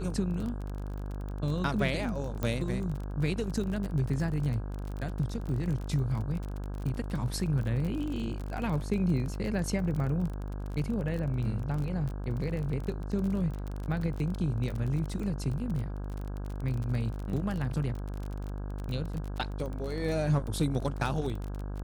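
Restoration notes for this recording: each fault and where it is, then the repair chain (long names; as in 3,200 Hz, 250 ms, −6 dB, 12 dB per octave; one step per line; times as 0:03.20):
mains buzz 50 Hz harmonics 33 −36 dBFS
surface crackle 32 per second −34 dBFS
0:02.43: click −18 dBFS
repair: click removal
hum removal 50 Hz, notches 33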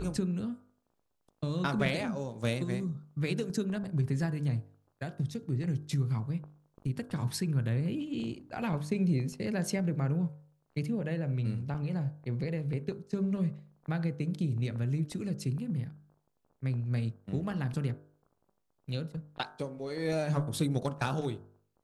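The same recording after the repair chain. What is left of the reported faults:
0:02.43: click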